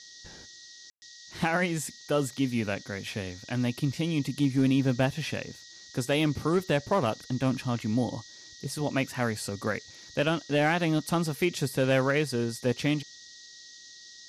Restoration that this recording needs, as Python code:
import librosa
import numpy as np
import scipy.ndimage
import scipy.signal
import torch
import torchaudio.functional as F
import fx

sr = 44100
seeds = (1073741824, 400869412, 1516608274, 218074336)

y = fx.fix_declip(x, sr, threshold_db=-16.5)
y = fx.notch(y, sr, hz=1900.0, q=30.0)
y = fx.fix_ambience(y, sr, seeds[0], print_start_s=13.68, print_end_s=14.18, start_s=0.9, end_s=1.02)
y = fx.noise_reduce(y, sr, print_start_s=13.68, print_end_s=14.18, reduce_db=24.0)